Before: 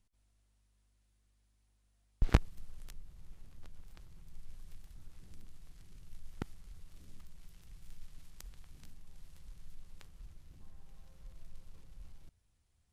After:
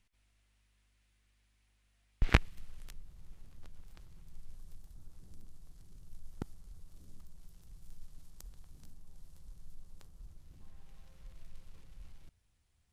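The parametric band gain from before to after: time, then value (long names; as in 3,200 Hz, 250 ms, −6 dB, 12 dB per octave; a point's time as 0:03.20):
parametric band 2,300 Hz 1.6 octaves
0:02.40 +10.5 dB
0:03.07 −0.5 dB
0:04.22 −0.5 dB
0:04.77 −8.5 dB
0:10.23 −8.5 dB
0:10.77 +3.5 dB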